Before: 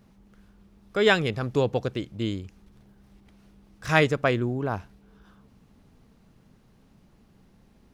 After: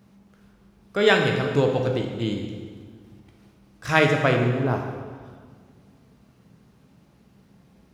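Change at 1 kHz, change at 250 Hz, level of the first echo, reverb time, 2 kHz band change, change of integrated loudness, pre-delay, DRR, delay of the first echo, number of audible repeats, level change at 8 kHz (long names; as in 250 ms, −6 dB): +3.0 dB, +3.0 dB, no echo audible, 1.7 s, +3.0 dB, +3.0 dB, 12 ms, 2.0 dB, no echo audible, no echo audible, +2.5 dB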